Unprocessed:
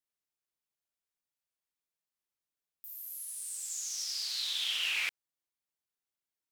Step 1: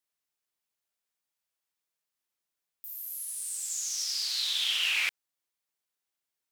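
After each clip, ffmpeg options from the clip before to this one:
-af "lowshelf=f=340:g=-6,volume=4.5dB"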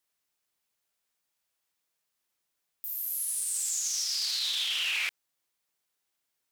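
-af "alimiter=level_in=3.5dB:limit=-24dB:level=0:latency=1:release=22,volume=-3.5dB,volume=5.5dB"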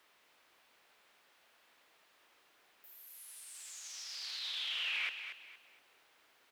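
-filter_complex "[0:a]aeval=exprs='val(0)+0.5*0.00355*sgn(val(0))':c=same,acrossover=split=280 3600:gain=0.2 1 0.141[a][b][c];[a][b][c]amix=inputs=3:normalize=0,aecho=1:1:233|466|699|932:0.355|0.11|0.0341|0.0106,volume=-5dB"

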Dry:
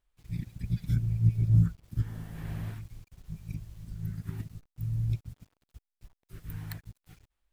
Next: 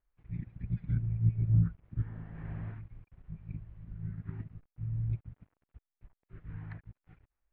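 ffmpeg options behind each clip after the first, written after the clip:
-af "lowpass=f=2.2k:w=0.5412,lowpass=f=2.2k:w=1.3066,volume=-3.5dB"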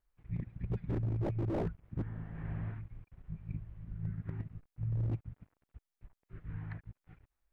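-af "aeval=exprs='0.0355*(abs(mod(val(0)/0.0355+3,4)-2)-1)':c=same,volume=1dB"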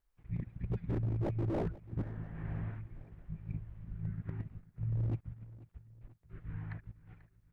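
-af "aecho=1:1:489|978|1467|1956:0.112|0.0595|0.0315|0.0167"

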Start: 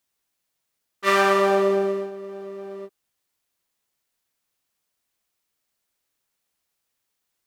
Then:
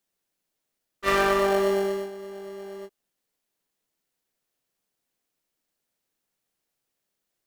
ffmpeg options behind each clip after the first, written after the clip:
-filter_complex "[0:a]asplit=2[a][b];[b]acrusher=samples=36:mix=1:aa=0.000001,volume=-8.5dB[c];[a][c]amix=inputs=2:normalize=0,equalizer=f=66:t=o:w=1.7:g=-10,volume=-4dB"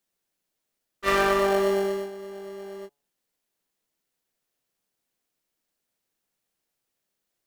-af "bandreject=f=142.3:t=h:w=4,bandreject=f=284.6:t=h:w=4,bandreject=f=426.9:t=h:w=4,bandreject=f=569.2:t=h:w=4,bandreject=f=711.5:t=h:w=4,bandreject=f=853.8:t=h:w=4,bandreject=f=996.1:t=h:w=4,bandreject=f=1.1384k:t=h:w=4,bandreject=f=1.2807k:t=h:w=4"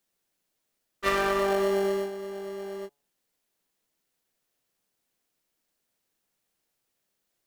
-af "acompressor=threshold=-23dB:ratio=6,volume=2dB"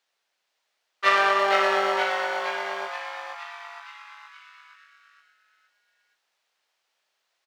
-filter_complex "[0:a]acrossover=split=550 5600:gain=0.0708 1 0.112[a][b][c];[a][b][c]amix=inputs=3:normalize=0,asplit=2[d][e];[e]asplit=7[f][g][h][i][j][k][l];[f]adelay=469,afreqshift=150,volume=-5dB[m];[g]adelay=938,afreqshift=300,volume=-10dB[n];[h]adelay=1407,afreqshift=450,volume=-15.1dB[o];[i]adelay=1876,afreqshift=600,volume=-20.1dB[p];[j]adelay=2345,afreqshift=750,volume=-25.1dB[q];[k]adelay=2814,afreqshift=900,volume=-30.2dB[r];[l]adelay=3283,afreqshift=1050,volume=-35.2dB[s];[m][n][o][p][q][r][s]amix=inputs=7:normalize=0[t];[d][t]amix=inputs=2:normalize=0,volume=8dB"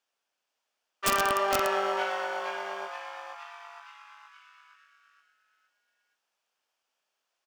-af "aeval=exprs='(mod(3.55*val(0)+1,2)-1)/3.55':c=same,equalizer=f=250:t=o:w=0.33:g=6,equalizer=f=2k:t=o:w=0.33:g=-7,equalizer=f=4k:t=o:w=0.33:g=-7,volume=-4.5dB"

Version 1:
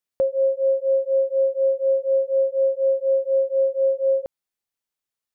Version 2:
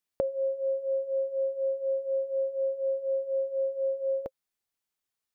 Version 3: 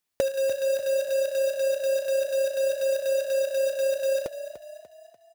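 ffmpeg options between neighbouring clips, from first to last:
-af "bandreject=f=530:w=12"
-filter_complex "[0:a]acrusher=bits=2:mode=log:mix=0:aa=0.000001,asplit=6[a][b][c][d][e][f];[b]adelay=294,afreqshift=31,volume=-12dB[g];[c]adelay=588,afreqshift=62,volume=-18.7dB[h];[d]adelay=882,afreqshift=93,volume=-25.5dB[i];[e]adelay=1176,afreqshift=124,volume=-32.2dB[j];[f]adelay=1470,afreqshift=155,volume=-39dB[k];[a][g][h][i][j][k]amix=inputs=6:normalize=0,volume=3.5dB"

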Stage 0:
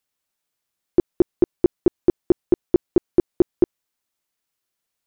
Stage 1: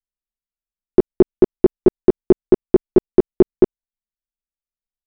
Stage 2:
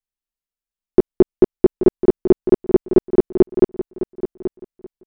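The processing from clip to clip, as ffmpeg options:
-af "anlmdn=158,aecho=1:1:4.7:0.69,volume=5.5dB"
-af "aecho=1:1:830|1660|2490:0.251|0.0527|0.0111"

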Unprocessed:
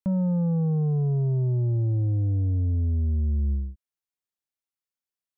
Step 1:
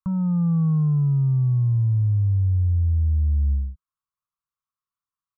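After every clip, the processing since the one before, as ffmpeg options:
-af "firequalizer=gain_entry='entry(170,0);entry(280,-26);entry(460,-16);entry(680,-19);entry(1100,11);entry(1800,-12)':delay=0.05:min_phase=1,volume=4dB"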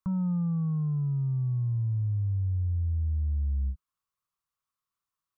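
-af "alimiter=level_in=3dB:limit=-24dB:level=0:latency=1:release=41,volume=-3dB,volume=2.5dB"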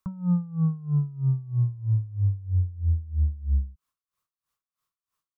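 -af "aeval=exprs='val(0)*pow(10,-21*(0.5-0.5*cos(2*PI*3.1*n/s))/20)':c=same,volume=8dB"

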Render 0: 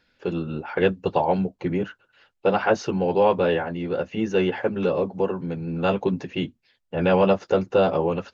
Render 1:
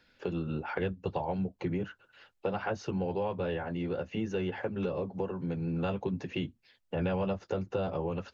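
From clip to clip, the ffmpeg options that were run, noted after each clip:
-filter_complex "[0:a]acrossover=split=120[a][b];[b]acompressor=threshold=-33dB:ratio=4[c];[a][c]amix=inputs=2:normalize=0"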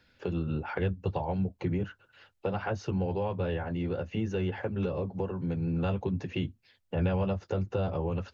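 -af "equalizer=f=88:t=o:w=1.2:g=9"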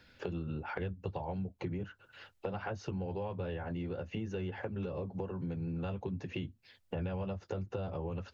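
-af "acompressor=threshold=-42dB:ratio=3,volume=3.5dB"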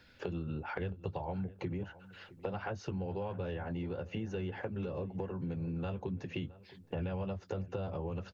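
-filter_complex "[0:a]asplit=2[a][b];[b]adelay=667,lowpass=f=2.1k:p=1,volume=-18.5dB,asplit=2[c][d];[d]adelay=667,lowpass=f=2.1k:p=1,volume=0.28[e];[a][c][e]amix=inputs=3:normalize=0"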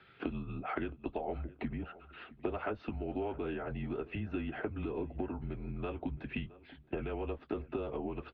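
-af "highpass=f=210:t=q:w=0.5412,highpass=f=210:t=q:w=1.307,lowpass=f=3.6k:t=q:w=0.5176,lowpass=f=3.6k:t=q:w=0.7071,lowpass=f=3.6k:t=q:w=1.932,afreqshift=-120,volume=3dB"

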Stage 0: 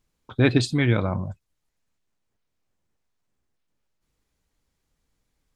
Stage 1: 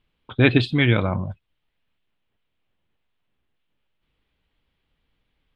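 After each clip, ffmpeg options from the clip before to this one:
-af "highshelf=f=4.6k:t=q:w=3:g=-14,volume=2dB"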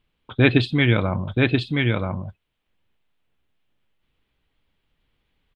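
-af "aecho=1:1:980:0.708"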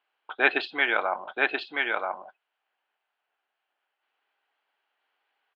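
-af "highpass=f=480:w=0.5412,highpass=f=480:w=1.3066,equalizer=f=510:t=q:w=4:g=-7,equalizer=f=780:t=q:w=4:g=7,equalizer=f=1.5k:t=q:w=4:g=6,equalizer=f=2.2k:t=q:w=4:g=-3,equalizer=f=3.6k:t=q:w=4:g=-8,lowpass=f=4.4k:w=0.5412,lowpass=f=4.4k:w=1.3066"

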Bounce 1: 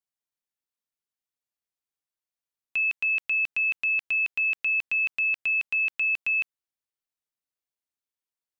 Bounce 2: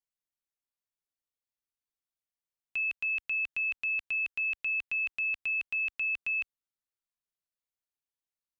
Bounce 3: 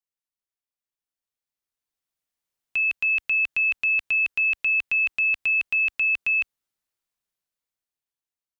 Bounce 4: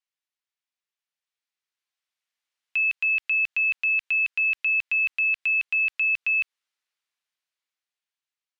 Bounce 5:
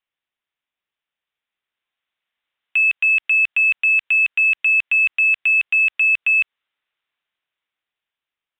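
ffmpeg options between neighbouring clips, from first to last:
-af "lowshelf=f=81:g=9,volume=-6dB"
-af "dynaudnorm=f=790:g=5:m=11.5dB,volume=-2.5dB"
-af "alimiter=level_in=0.5dB:limit=-24dB:level=0:latency=1:release=133,volume=-0.5dB,bandpass=f=2.5k:t=q:w=0.73:csg=0,volume=5.5dB"
-af "aresample=8000,aresample=44100,acontrast=88"

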